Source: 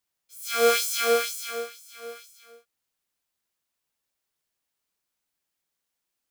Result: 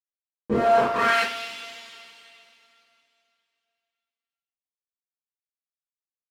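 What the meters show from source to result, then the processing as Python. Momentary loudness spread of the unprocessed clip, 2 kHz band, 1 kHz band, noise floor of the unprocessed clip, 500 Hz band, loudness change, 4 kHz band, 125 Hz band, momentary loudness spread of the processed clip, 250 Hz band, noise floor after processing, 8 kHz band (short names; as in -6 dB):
20 LU, +4.0 dB, +7.5 dB, -83 dBFS, +1.0 dB, +2.0 dB, -3.0 dB, n/a, 18 LU, +12.5 dB, under -85 dBFS, -14.0 dB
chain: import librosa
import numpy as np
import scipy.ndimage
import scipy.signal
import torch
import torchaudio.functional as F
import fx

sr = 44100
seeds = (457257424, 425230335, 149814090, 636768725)

p1 = np.r_[np.sort(x[:len(x) // 64 * 64].reshape(-1, 64), axis=1).ravel(), x[len(x) // 64 * 64:]]
p2 = p1 + fx.room_flutter(p1, sr, wall_m=5.0, rt60_s=0.44, dry=0)
p3 = fx.schmitt(p2, sr, flips_db=-20.0)
p4 = fx.rev_double_slope(p3, sr, seeds[0], early_s=0.24, late_s=2.8, knee_db=-18, drr_db=-8.5)
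p5 = fx.filter_sweep_bandpass(p4, sr, from_hz=230.0, to_hz=3000.0, start_s=0.27, end_s=1.39, q=1.5)
p6 = fx.rider(p5, sr, range_db=10, speed_s=2.0)
y = F.gain(torch.from_numpy(p6), 8.5).numpy()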